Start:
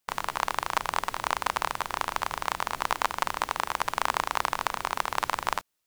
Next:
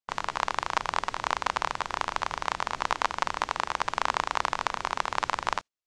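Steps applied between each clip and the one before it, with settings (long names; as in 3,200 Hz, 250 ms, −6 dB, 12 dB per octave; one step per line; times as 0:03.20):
low-pass filter 7,200 Hz 24 dB per octave
noise gate −39 dBFS, range −15 dB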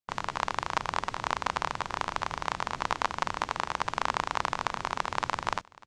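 parametric band 130 Hz +7 dB 2.4 octaves
single-tap delay 595 ms −22.5 dB
level −2.5 dB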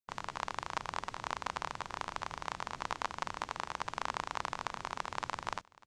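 high-shelf EQ 8,200 Hz +5.5 dB
level −8 dB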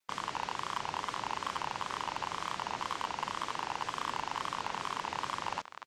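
mid-hump overdrive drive 29 dB, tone 4,100 Hz, clips at −14.5 dBFS
tape wow and flutter 130 cents
level −6.5 dB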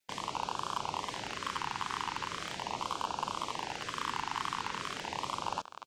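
auto-filter notch sine 0.4 Hz 560–2,000 Hz
level +2 dB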